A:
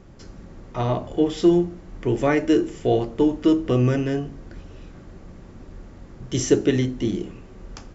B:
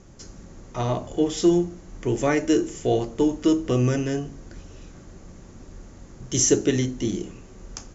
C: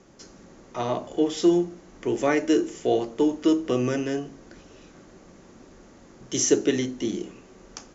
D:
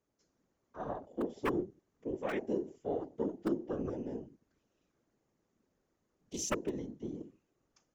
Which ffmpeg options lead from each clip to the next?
-af "lowpass=f=6.7k:t=q:w=5.1,volume=-2dB"
-filter_complex "[0:a]acrossover=split=190 6600:gain=0.178 1 0.224[a][b][c];[a][b][c]amix=inputs=3:normalize=0"
-af "aeval=exprs='(mod(3.55*val(0)+1,2)-1)/3.55':c=same,afwtdn=0.0316,afftfilt=real='hypot(re,im)*cos(2*PI*random(0))':imag='hypot(re,im)*sin(2*PI*random(1))':win_size=512:overlap=0.75,volume=-7dB"

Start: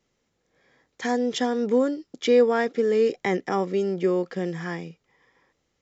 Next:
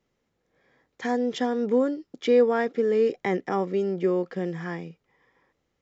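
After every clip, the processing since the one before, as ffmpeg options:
-af "highshelf=f=4.1k:g=-10,volume=-1dB"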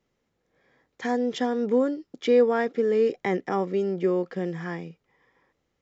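-af anull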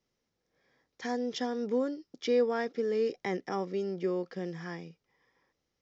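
-af "lowpass=f=5.5k:t=q:w=3.3,volume=-7.5dB"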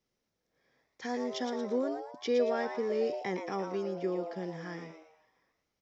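-filter_complex "[0:a]asplit=5[a][b][c][d][e];[b]adelay=114,afreqshift=150,volume=-7.5dB[f];[c]adelay=228,afreqshift=300,volume=-15.7dB[g];[d]adelay=342,afreqshift=450,volume=-23.9dB[h];[e]adelay=456,afreqshift=600,volume=-32dB[i];[a][f][g][h][i]amix=inputs=5:normalize=0,volume=-2dB"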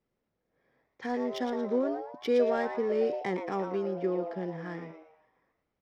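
-af "adynamicsmooth=sensitivity=5.5:basefreq=2.4k,volume=3dB"

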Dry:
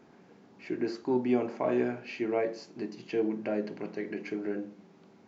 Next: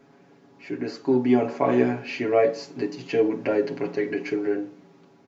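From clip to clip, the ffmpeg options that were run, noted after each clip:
-af "aecho=1:1:7.2:0.86,dynaudnorm=f=320:g=7:m=7dB"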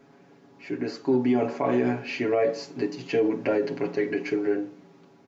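-af "alimiter=limit=-14.5dB:level=0:latency=1:release=44"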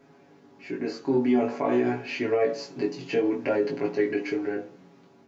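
-af "flanger=delay=19:depth=2.8:speed=0.51,volume=2.5dB"

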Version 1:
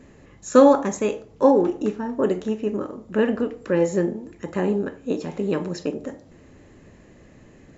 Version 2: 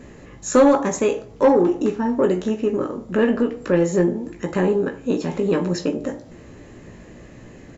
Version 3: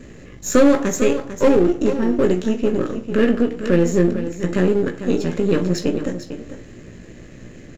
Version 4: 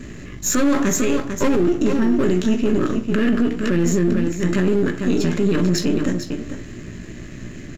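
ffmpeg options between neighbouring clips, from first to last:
-filter_complex "[0:a]asplit=2[a][b];[b]acompressor=threshold=-26dB:ratio=6,volume=0dB[c];[a][c]amix=inputs=2:normalize=0,asplit=2[d][e];[e]adelay=17,volume=-6.5dB[f];[d][f]amix=inputs=2:normalize=0,acontrast=45,volume=-5.5dB"
-filter_complex "[0:a]aeval=exprs='if(lt(val(0),0),0.447*val(0),val(0))':c=same,equalizer=f=880:t=o:w=0.86:g=-10,asplit=2[a][b];[b]aecho=0:1:448:0.282[c];[a][c]amix=inputs=2:normalize=0,volume=5dB"
-af "equalizer=f=500:t=o:w=0.33:g=-12,equalizer=f=800:t=o:w=0.33:g=-5,equalizer=f=12.5k:t=o:w=0.33:g=4,alimiter=limit=-15dB:level=0:latency=1:release=14,volume=6dB"

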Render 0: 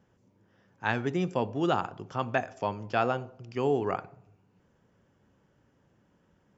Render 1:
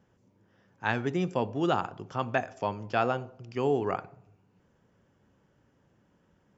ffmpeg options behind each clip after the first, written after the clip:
-af anull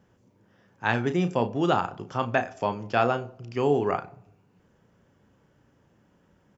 -filter_complex "[0:a]asplit=2[a][b];[b]adelay=34,volume=-10dB[c];[a][c]amix=inputs=2:normalize=0,volume=3.5dB"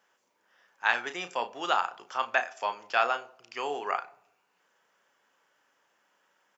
-af "highpass=1k,volume=2.5dB"

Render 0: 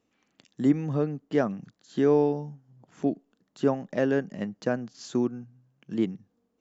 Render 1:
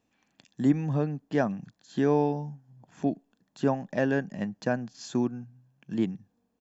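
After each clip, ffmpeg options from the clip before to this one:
-af "aecho=1:1:1.2:0.37"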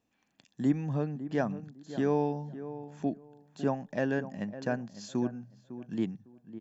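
-filter_complex "[0:a]asplit=2[a][b];[b]adelay=554,lowpass=f=1.3k:p=1,volume=-12.5dB,asplit=2[c][d];[d]adelay=554,lowpass=f=1.3k:p=1,volume=0.21,asplit=2[e][f];[f]adelay=554,lowpass=f=1.3k:p=1,volume=0.21[g];[a][c][e][g]amix=inputs=4:normalize=0,volume=-4dB"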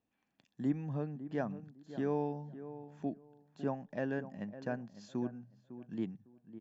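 -af "aemphasis=mode=reproduction:type=50fm,volume=-6.5dB"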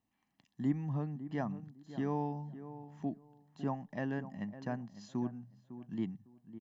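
-af "aecho=1:1:1:0.52"

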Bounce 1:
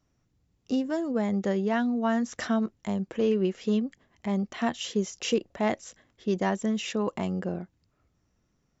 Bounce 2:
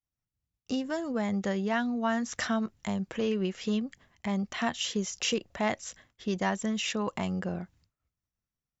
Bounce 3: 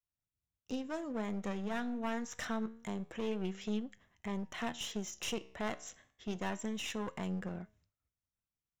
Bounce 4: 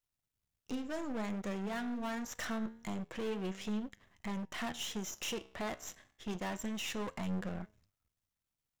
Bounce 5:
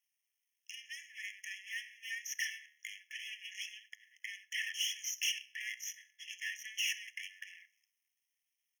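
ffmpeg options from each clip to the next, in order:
-filter_complex "[0:a]agate=range=-33dB:threshold=-57dB:ratio=3:detection=peak,equalizer=f=350:t=o:w=2:g=-8.5,asplit=2[a][b];[b]acompressor=threshold=-38dB:ratio=6,volume=-1dB[c];[a][c]amix=inputs=2:normalize=0"
-af "aeval=exprs='clip(val(0),-1,0.0211)':c=same,equalizer=f=4.6k:w=7.6:g=-11.5,flanger=delay=9.3:depth=7:regen=85:speed=0.26:shape=triangular,volume=-2dB"
-af "aeval=exprs='if(lt(val(0),0),0.251*val(0),val(0))':c=same,volume=6.5dB"
-af "aecho=1:1:66|132|198:0.0841|0.0294|0.0103,afftfilt=real='re*eq(mod(floor(b*sr/1024/1700),2),1)':imag='im*eq(mod(floor(b*sr/1024/1700),2),1)':win_size=1024:overlap=0.75,volume=7dB"

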